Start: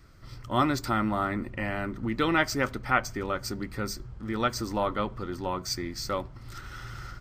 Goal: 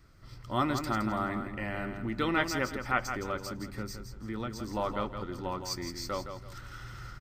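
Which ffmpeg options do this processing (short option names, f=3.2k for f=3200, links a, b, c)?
-filter_complex "[0:a]asettb=1/sr,asplit=3[a][b][c];[a]atrim=end=3.424[d];[b]atrim=start=3.42:end=4.69,asetpts=PTS-STARTPTS,afade=t=in:d=0.004:c=qsin,afade=t=out:st=1.266:d=0.004:c=qsin,acrossover=split=300[e][f];[f]acompressor=threshold=-37dB:ratio=2.5[g];[e][g]amix=inputs=2:normalize=0[h];[c]atrim=start=4.686[i];[d][h]acrossfade=d=0.004:c1=hsin:c2=qsin[j];[j][i]acrossfade=d=0.004:c1=qsin:c2=hsin,aecho=1:1:166|332|498:0.398|0.115|0.0335,volume=-4.5dB"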